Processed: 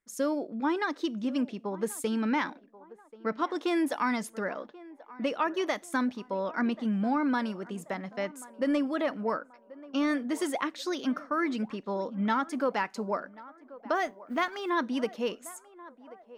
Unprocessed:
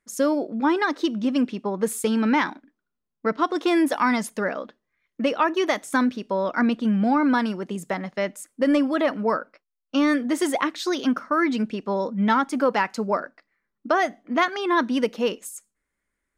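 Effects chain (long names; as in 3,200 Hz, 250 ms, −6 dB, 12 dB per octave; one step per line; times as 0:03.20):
0:13.95–0:14.70: mu-law and A-law mismatch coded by A
feedback echo with a band-pass in the loop 1,084 ms, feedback 51%, band-pass 690 Hz, level −17.5 dB
level −7.5 dB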